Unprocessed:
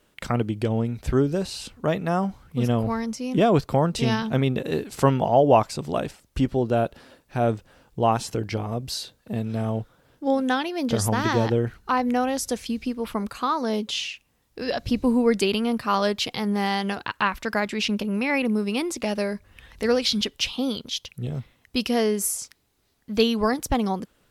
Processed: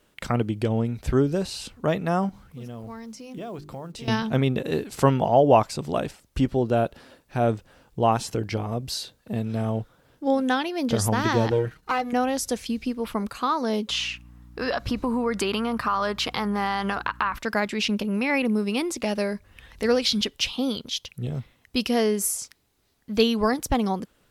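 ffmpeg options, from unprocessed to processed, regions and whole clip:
-filter_complex "[0:a]asettb=1/sr,asplit=3[a][b][c];[a]atrim=end=2.294[d];[b]atrim=start=2.29:end=4.08,asetpts=PTS-STARTPTS,afade=t=in:d=0.004:c=qsin,afade=t=out:st=1.786:d=0.004:c=qsin,bandreject=f=50:t=h:w=6,bandreject=f=100:t=h:w=6,bandreject=f=150:t=h:w=6,bandreject=f=200:t=h:w=6,bandreject=f=250:t=h:w=6,bandreject=f=300:t=h:w=6,bandreject=f=350:t=h:w=6,bandreject=f=400:t=h:w=6,acompressor=threshold=-41dB:ratio=2.5:attack=3.2:release=140:knee=1:detection=peak,acrusher=bits=8:mode=log:mix=0:aa=0.000001[e];[c]atrim=start=4.076[f];[d][e]acrossfade=d=0.004:c1=hsin:c2=qsin[g];[g][f]acrossfade=d=0.004:c1=qsin:c2=hsin,asettb=1/sr,asplit=3[h][i][j];[h]atrim=end=11.514[k];[i]atrim=start=11.51:end=12.13,asetpts=PTS-STARTPTS,afade=t=in:d=0.004:c=qsin,afade=t=out:st=0.616:d=0.004:c=qsin,aeval=exprs='if(lt(val(0),0),0.447*val(0),val(0))':c=same,highpass=44,aecho=1:1:6.4:0.62,atrim=end_sample=27342[l];[j]atrim=start=12.126[m];[k][l]acrossfade=d=0.004:c1=hsin:c2=qsin[n];[n][m]acrossfade=d=0.004:c1=qsin:c2=hsin,asettb=1/sr,asplit=3[o][p][q];[o]atrim=end=13.894[r];[p]atrim=start=13.89:end=17.39,asetpts=PTS-STARTPTS,afade=t=in:d=0.004:c=qsin,afade=t=out:st=3.496:d=0.004:c=qsin,equalizer=f=1.2k:t=o:w=1.2:g=12.5,acompressor=threshold=-21dB:ratio=5:attack=3.2:release=140:knee=1:detection=peak,aeval=exprs='val(0)+0.00501*(sin(2*PI*60*n/s)+sin(2*PI*2*60*n/s)/2+sin(2*PI*3*60*n/s)/3+sin(2*PI*4*60*n/s)/4+sin(2*PI*5*60*n/s)/5)':c=same[s];[q]atrim=start=17.386[t];[r][s]acrossfade=d=0.004:c1=hsin:c2=qsin[u];[u][t]acrossfade=d=0.004:c1=qsin:c2=hsin"

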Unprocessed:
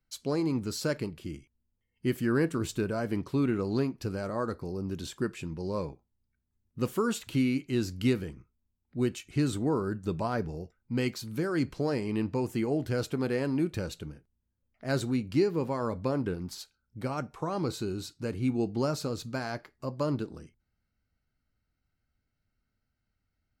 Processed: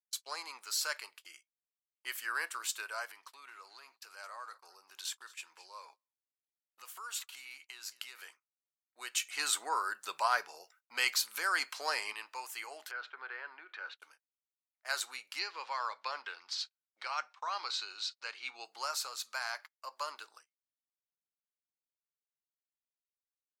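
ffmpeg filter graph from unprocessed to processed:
-filter_complex "[0:a]asettb=1/sr,asplit=3[a][b][c];[a]atrim=end=3.054[d];[b]atrim=start=3.05:end=8.19,asetpts=PTS-STARTPTS,afade=t=in:d=0.004:c=qsin,afade=t=out:st=5.136:d=0.004:c=qsin,acompressor=threshold=-34dB:ratio=10:attack=3.2:release=140:knee=1:detection=peak,aecho=1:1:223:0.1,atrim=end_sample=226674[e];[c]atrim=start=8.186[f];[d][e]acrossfade=d=0.004:c1=hsin:c2=qsin[g];[g][f]acrossfade=d=0.004:c1=qsin:c2=hsin,asettb=1/sr,asplit=3[h][i][j];[h]atrim=end=9.154[k];[i]atrim=start=9.15:end=12.13,asetpts=PTS-STARTPTS,afade=t=in:d=0.004:c=qsin,afade=t=out:st=2.976:d=0.004:c=qsin,lowshelf=f=200:g=11,acontrast=60[l];[j]atrim=start=12.126[m];[k][l]acrossfade=d=0.004:c1=hsin:c2=qsin[n];[n][m]acrossfade=d=0.004:c1=qsin:c2=hsin,asettb=1/sr,asplit=3[o][p][q];[o]atrim=end=12.914[r];[p]atrim=start=12.91:end=14,asetpts=PTS-STARTPTS,afade=t=in:d=0.004:c=qsin,afade=t=out:st=1.086:d=0.004:c=qsin,acompressor=threshold=-31dB:ratio=5:attack=3.2:release=140:knee=1:detection=peak,highpass=f=220:w=0.5412,highpass=f=220:w=1.3066,equalizer=f=380:t=q:w=4:g=8,equalizer=f=1.5k:t=q:w=4:g=8,equalizer=f=2.7k:t=q:w=4:g=-4,lowpass=f=3.2k:w=0.5412,lowpass=f=3.2k:w=1.3066[s];[q]atrim=start=13.996[t];[r][s]acrossfade=d=0.004:c1=hsin:c2=qsin[u];[u][t]acrossfade=d=0.004:c1=qsin:c2=hsin,asettb=1/sr,asplit=3[v][w][x];[v]atrim=end=15.394[y];[w]atrim=start=15.39:end=18.65,asetpts=PTS-STARTPTS,afade=t=in:d=0.004:c=qsin,afade=t=out:st=3.256:d=0.004:c=qsin,lowpass=f=4.5k:w=0.5412,lowpass=f=4.5k:w=1.3066,aemphasis=mode=production:type=75kf[z];[x]atrim=start=18.646[aa];[y][z]acrossfade=d=0.004:c1=hsin:c2=qsin[ab];[ab][aa]acrossfade=d=0.004:c1=qsin:c2=hsin,agate=range=-30dB:threshold=-43dB:ratio=16:detection=peak,highpass=f=950:w=0.5412,highpass=f=950:w=1.3066,highshelf=f=6.2k:g=5,volume=1.5dB"

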